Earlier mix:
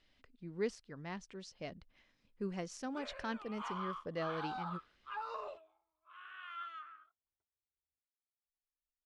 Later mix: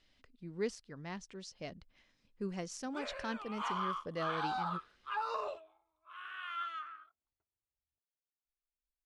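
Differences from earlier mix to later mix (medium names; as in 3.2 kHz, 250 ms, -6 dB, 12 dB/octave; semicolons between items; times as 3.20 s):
background +5.5 dB; master: add tone controls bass +1 dB, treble +5 dB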